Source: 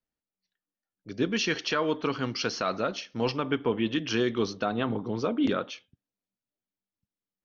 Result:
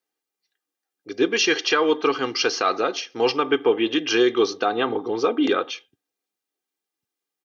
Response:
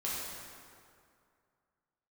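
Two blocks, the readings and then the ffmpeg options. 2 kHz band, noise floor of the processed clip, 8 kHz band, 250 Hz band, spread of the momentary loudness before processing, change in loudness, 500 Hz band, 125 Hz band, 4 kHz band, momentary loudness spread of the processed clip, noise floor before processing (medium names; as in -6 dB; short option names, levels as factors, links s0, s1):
+8.0 dB, under -85 dBFS, no reading, +4.5 dB, 5 LU, +7.5 dB, +9.0 dB, -8.0 dB, +8.5 dB, 6 LU, under -85 dBFS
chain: -af "highpass=290,aecho=1:1:2.5:0.63,volume=2.24"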